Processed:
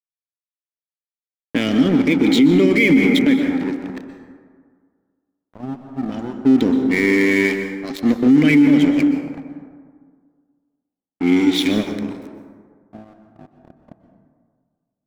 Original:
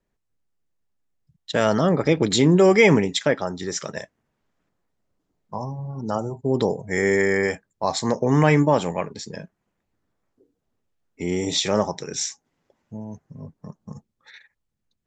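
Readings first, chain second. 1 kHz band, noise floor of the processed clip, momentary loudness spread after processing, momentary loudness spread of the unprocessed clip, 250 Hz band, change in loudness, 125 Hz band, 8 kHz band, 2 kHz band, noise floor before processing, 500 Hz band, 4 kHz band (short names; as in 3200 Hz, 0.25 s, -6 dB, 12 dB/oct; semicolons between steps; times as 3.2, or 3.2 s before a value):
-6.5 dB, under -85 dBFS, 17 LU, 21 LU, +9.5 dB, +5.0 dB, -2.0 dB, n/a, +4.5 dB, -78 dBFS, -2.0 dB, +1.5 dB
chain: low-pass opened by the level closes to 660 Hz, open at -18 dBFS; vowel filter i; crossover distortion -45.5 dBFS; plate-style reverb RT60 1.8 s, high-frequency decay 0.4×, pre-delay 0.11 s, DRR 6.5 dB; maximiser +24 dB; gain -4.5 dB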